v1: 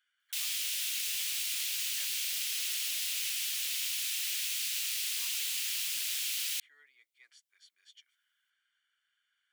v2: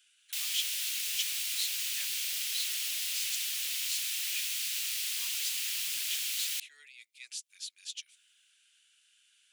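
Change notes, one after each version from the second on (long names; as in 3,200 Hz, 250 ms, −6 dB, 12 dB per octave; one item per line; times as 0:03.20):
speech: remove Savitzky-Golay smoothing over 41 samples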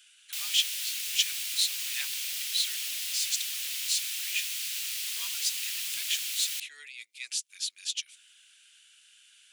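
speech +8.5 dB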